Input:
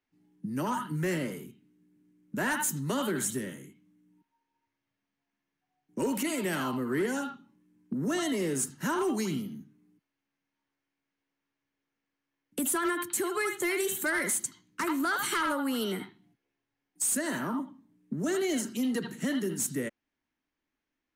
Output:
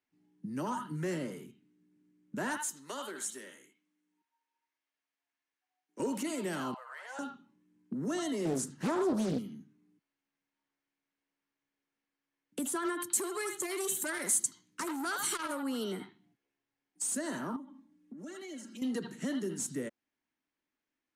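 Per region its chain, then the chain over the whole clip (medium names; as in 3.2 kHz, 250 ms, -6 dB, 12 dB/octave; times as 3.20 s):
2.57–6.00 s: high-pass 300 Hz + bass shelf 490 Hz -11.5 dB
6.74–7.19 s: steep high-pass 570 Hz 72 dB/octave + treble shelf 5.3 kHz -11 dB + loudspeaker Doppler distortion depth 0.11 ms
8.45–9.39 s: peaking EQ 180 Hz +5.5 dB 2.6 oct + loudspeaker Doppler distortion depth 0.67 ms
13.00–15.63 s: treble shelf 6 kHz +12 dB + transformer saturation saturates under 2.6 kHz
17.56–18.82 s: comb 3.6 ms, depth 82% + compression 2.5:1, threshold -45 dBFS
whole clip: dynamic bell 2.2 kHz, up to -6 dB, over -47 dBFS, Q 1.1; low-pass 9 kHz 12 dB/octave; bass shelf 86 Hz -11 dB; trim -3 dB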